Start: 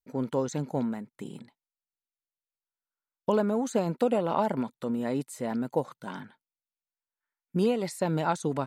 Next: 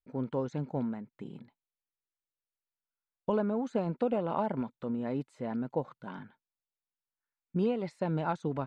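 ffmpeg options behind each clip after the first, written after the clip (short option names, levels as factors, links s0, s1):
-af "lowpass=2900,lowshelf=f=97:g=9.5,bandreject=f=1900:w=21,volume=0.562"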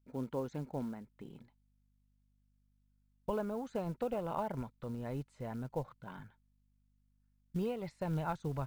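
-af "asubboost=boost=11:cutoff=73,aeval=exprs='val(0)+0.000398*(sin(2*PI*50*n/s)+sin(2*PI*2*50*n/s)/2+sin(2*PI*3*50*n/s)/3+sin(2*PI*4*50*n/s)/4+sin(2*PI*5*50*n/s)/5)':c=same,acrusher=bits=7:mode=log:mix=0:aa=0.000001,volume=0.596"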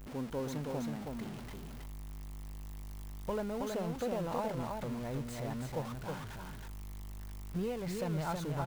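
-af "aeval=exprs='val(0)+0.5*0.01*sgn(val(0))':c=same,aecho=1:1:321:0.631,volume=0.794"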